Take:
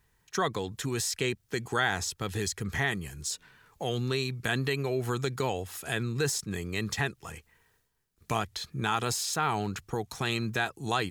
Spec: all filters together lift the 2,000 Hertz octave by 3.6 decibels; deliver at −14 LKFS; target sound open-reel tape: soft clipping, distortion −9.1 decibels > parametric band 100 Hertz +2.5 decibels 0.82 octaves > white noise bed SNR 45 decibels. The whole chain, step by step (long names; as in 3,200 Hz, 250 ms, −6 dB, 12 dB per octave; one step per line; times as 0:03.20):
parametric band 2,000 Hz +4.5 dB
soft clipping −25.5 dBFS
parametric band 100 Hz +2.5 dB 0.82 octaves
white noise bed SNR 45 dB
level +19 dB